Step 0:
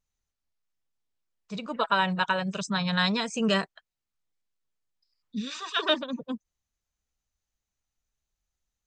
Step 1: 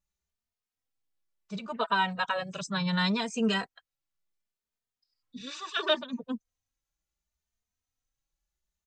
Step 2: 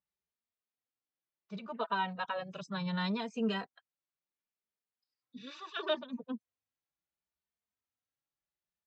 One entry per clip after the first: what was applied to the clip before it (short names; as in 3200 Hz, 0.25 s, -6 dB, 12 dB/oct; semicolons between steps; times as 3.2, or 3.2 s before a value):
endless flanger 3 ms +0.7 Hz
dynamic EQ 1800 Hz, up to -4 dB, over -44 dBFS, Q 0.98; Bessel high-pass 160 Hz, order 2; air absorption 190 m; gain -3.5 dB